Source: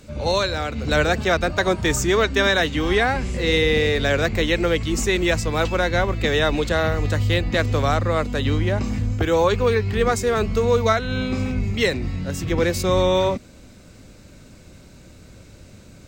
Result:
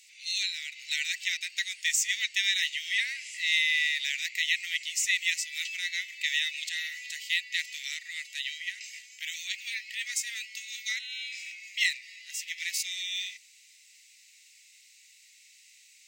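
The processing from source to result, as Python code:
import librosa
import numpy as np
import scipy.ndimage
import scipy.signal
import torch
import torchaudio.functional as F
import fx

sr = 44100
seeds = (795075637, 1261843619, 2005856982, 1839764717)

y = scipy.signal.sosfilt(scipy.signal.cheby1(6, 3, 1900.0, 'highpass', fs=sr, output='sos'), x)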